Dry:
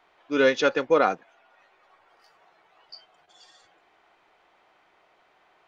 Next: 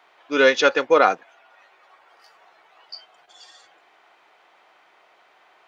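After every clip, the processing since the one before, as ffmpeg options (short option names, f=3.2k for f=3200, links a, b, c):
-af "highpass=f=520:p=1,volume=7dB"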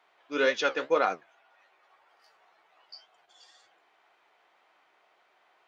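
-af "flanger=delay=8.2:depth=8.9:regen=56:speed=1.9:shape=triangular,volume=-5.5dB"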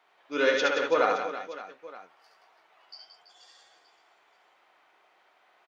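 -af "aecho=1:1:70|175|332.5|568.8|923.1:0.631|0.398|0.251|0.158|0.1"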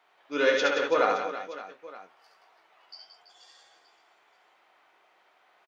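-filter_complex "[0:a]asplit=2[a][b];[b]adelay=21,volume=-12.5dB[c];[a][c]amix=inputs=2:normalize=0"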